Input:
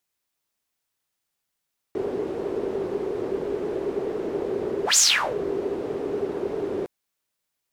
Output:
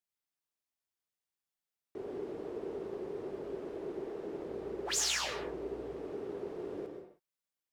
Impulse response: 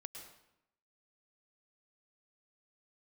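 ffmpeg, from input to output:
-filter_complex "[0:a]asettb=1/sr,asplit=3[a][b][c];[a]atrim=end=4.464[d];[b]atrim=start=4.46:end=5.94,asetpts=PTS-STARTPTS,afade=t=in:d=0.004:c=qsin,afade=t=out:st=1.476:d=0.004:c=qsin,aeval=exprs='val(0)+0.00501*(sin(2*PI*60*n/s)+sin(2*PI*2*60*n/s)/2+sin(2*PI*3*60*n/s)/3+sin(2*PI*4*60*n/s)/4+sin(2*PI*5*60*n/s)/5)':c=same[e];[c]atrim=start=5.936[f];[d][e]acrossfade=d=0.004:c1=hsin:c2=qsin[g];[g][f]acrossfade=d=0.004:c1=qsin:c2=hsin[h];[1:a]atrim=start_sample=2205,afade=t=out:st=0.38:d=0.01,atrim=end_sample=17199[i];[h][i]afir=irnorm=-1:irlink=0,volume=-8.5dB"

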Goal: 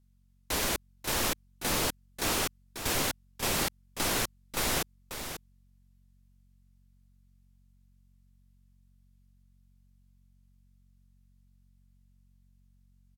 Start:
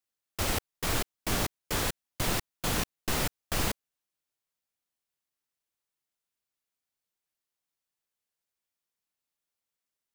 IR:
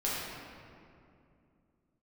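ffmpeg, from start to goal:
-af "bass=f=250:g=-6,treble=f=4k:g=2,aeval=exprs='val(0)+0.000631*(sin(2*PI*60*n/s)+sin(2*PI*2*60*n/s)/2+sin(2*PI*3*60*n/s)/3+sin(2*PI*4*60*n/s)/4+sin(2*PI*5*60*n/s)/5)':c=same,aecho=1:1:416:0.355,asetrate=33957,aresample=44100"

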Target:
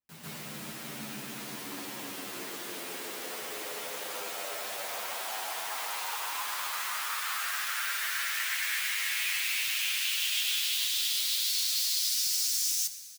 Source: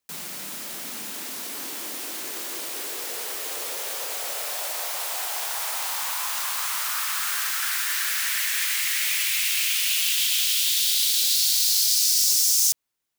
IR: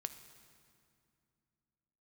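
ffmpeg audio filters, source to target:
-filter_complex "[0:a]bass=f=250:g=9,treble=f=4k:g=-7,asplit=2[a][b];[1:a]atrim=start_sample=2205,adelay=144[c];[b][c]afir=irnorm=-1:irlink=0,volume=10dB[d];[a][d]amix=inputs=2:normalize=0,asplit=2[e][f];[f]adelay=9.6,afreqshift=-0.25[g];[e][g]amix=inputs=2:normalize=1,volume=-8dB"

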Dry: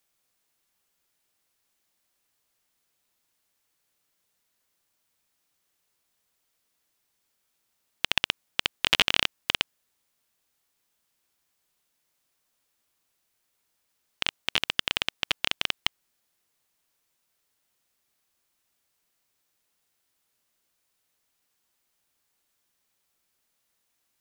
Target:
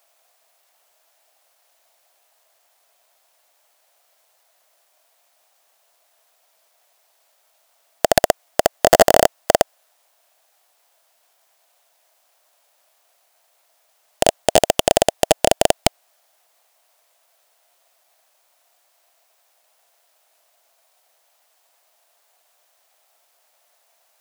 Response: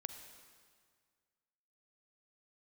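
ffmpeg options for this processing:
-af "aeval=exprs='max(val(0),0)':c=same,highpass=f=660:t=q:w=4.8,aeval=exprs='0.891*sin(PI/2*4.47*val(0)/0.891)':c=same"

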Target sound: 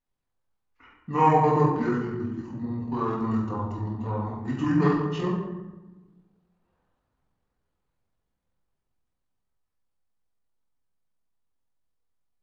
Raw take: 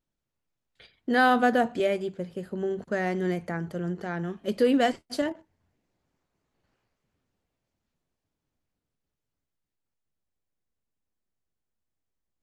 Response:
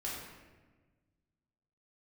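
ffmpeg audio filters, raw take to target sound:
-filter_complex "[1:a]atrim=start_sample=2205,asetrate=48510,aresample=44100[a];[0:a][a]afir=irnorm=-1:irlink=0,asetrate=26990,aresample=44100,atempo=1.63392,equalizer=f=870:w=0.73:g=6,volume=-1.5dB"

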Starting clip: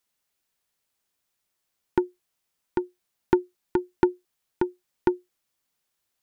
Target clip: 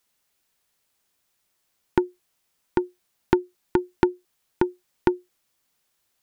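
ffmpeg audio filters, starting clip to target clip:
-af "acompressor=threshold=-25dB:ratio=2,volume=6dB"

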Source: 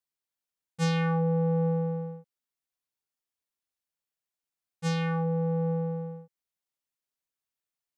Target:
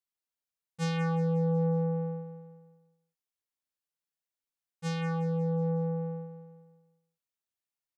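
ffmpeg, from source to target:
-af "aecho=1:1:182|364|546|728|910:0.251|0.126|0.0628|0.0314|0.0157,volume=-4.5dB"

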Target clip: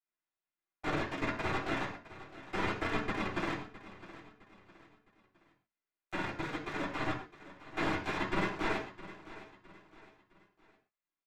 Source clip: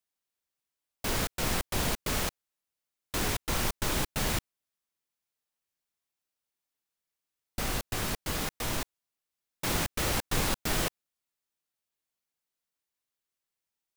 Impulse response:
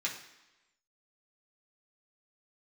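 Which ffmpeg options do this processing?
-filter_complex "[0:a]lowpass=1.3k,bandreject=f=50:t=h:w=6,bandreject=f=100:t=h:w=6,aecho=1:1:3.6:0.47,asplit=4[a][b][c][d];[b]asetrate=33038,aresample=44100,atempo=1.33484,volume=-15dB[e];[c]asetrate=35002,aresample=44100,atempo=1.25992,volume=-13dB[f];[d]asetrate=37084,aresample=44100,atempo=1.18921,volume=-17dB[g];[a][e][f][g]amix=inputs=4:normalize=0,aeval=exprs='max(val(0),0)':c=same,flanger=delay=5.4:depth=4.7:regen=73:speed=0.28:shape=triangular,asetrate=54684,aresample=44100,aecho=1:1:661|1322|1983:0.158|0.0602|0.0229[h];[1:a]atrim=start_sample=2205,atrim=end_sample=6615[i];[h][i]afir=irnorm=-1:irlink=0,volume=6dB"

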